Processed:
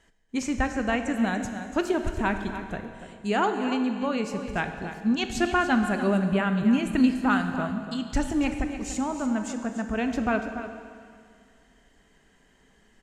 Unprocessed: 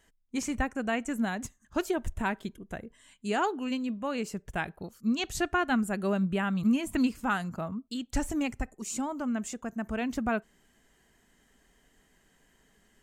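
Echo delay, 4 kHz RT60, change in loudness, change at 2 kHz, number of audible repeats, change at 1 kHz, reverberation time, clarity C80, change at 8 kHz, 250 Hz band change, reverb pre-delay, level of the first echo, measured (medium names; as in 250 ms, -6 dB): 290 ms, 2.1 s, +4.5 dB, +5.0 dB, 1, +5.0 dB, 2.2 s, 7.0 dB, +0.5 dB, +5.0 dB, 20 ms, -11.5 dB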